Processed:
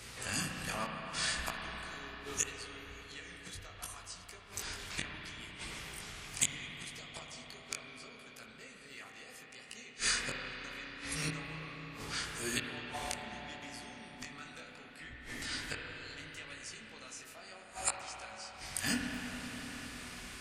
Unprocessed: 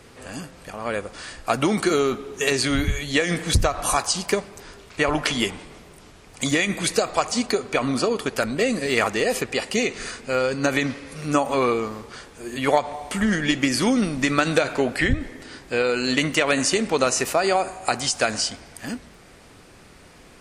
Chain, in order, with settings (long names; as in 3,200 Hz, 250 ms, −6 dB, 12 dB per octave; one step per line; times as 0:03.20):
gate with flip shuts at −19 dBFS, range −29 dB
guitar amp tone stack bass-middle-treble 5-5-5
chorus effect 0.72 Hz, delay 17 ms, depth 4.9 ms
convolution reverb RT60 5.4 s, pre-delay 32 ms, DRR 0.5 dB
level +14 dB